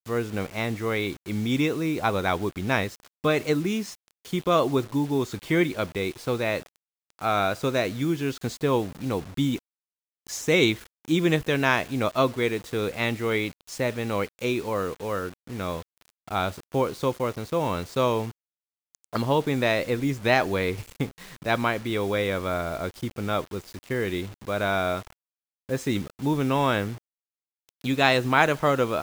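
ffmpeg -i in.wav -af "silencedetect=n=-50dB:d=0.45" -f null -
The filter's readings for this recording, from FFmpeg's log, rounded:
silence_start: 9.59
silence_end: 10.27 | silence_duration: 0.68
silence_start: 18.31
silence_end: 18.95 | silence_duration: 0.63
silence_start: 25.13
silence_end: 25.69 | silence_duration: 0.56
silence_start: 26.98
silence_end: 27.69 | silence_duration: 0.71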